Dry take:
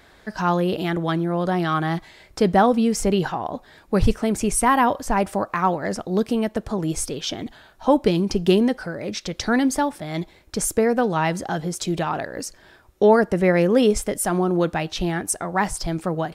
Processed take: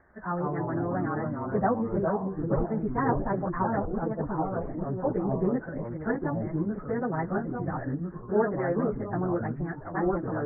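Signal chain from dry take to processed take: steep low-pass 1.9 kHz 72 dB/octave; plain phase-vocoder stretch 0.64×; ever faster or slower copies 99 ms, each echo -3 st, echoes 3; trim -6 dB

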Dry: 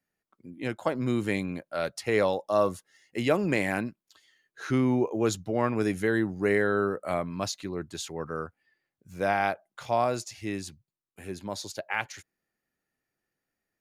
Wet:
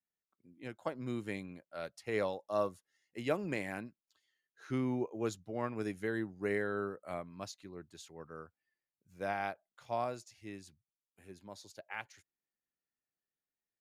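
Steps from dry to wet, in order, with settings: upward expansion 1.5:1, over -36 dBFS; trim -8 dB

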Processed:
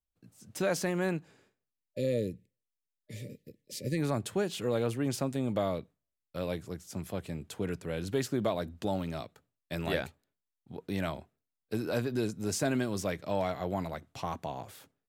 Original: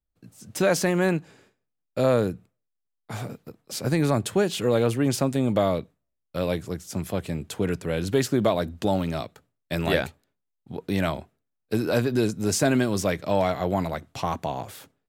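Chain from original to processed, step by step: time-frequency box 1.73–3.98 s, 620–1700 Hz -28 dB; trim -8.5 dB

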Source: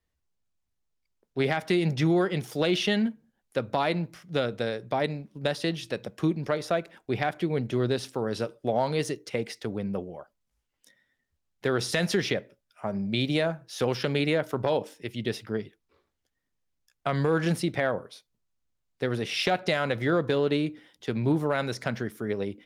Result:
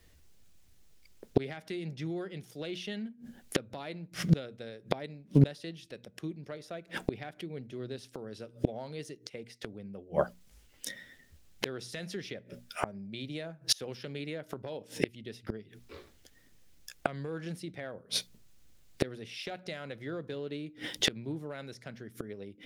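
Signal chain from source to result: peaking EQ 1 kHz -7 dB 1.2 oct; hum notches 60/120/180/240 Hz; inverted gate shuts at -32 dBFS, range -33 dB; loudness maximiser +29.5 dB; loudspeaker Doppler distortion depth 0.19 ms; trim -9 dB

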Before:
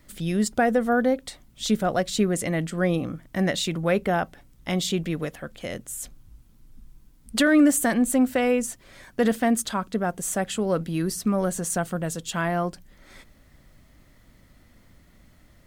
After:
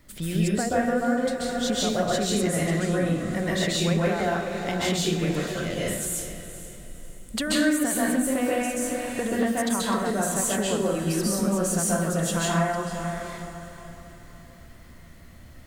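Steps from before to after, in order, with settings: on a send: echo that smears into a reverb 474 ms, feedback 41%, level -13 dB; on the sum: compression 5:1, threshold -27 dBFS, peak gain reduction 12 dB; plate-style reverb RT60 0.63 s, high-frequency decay 0.9×, pre-delay 120 ms, DRR -5.5 dB

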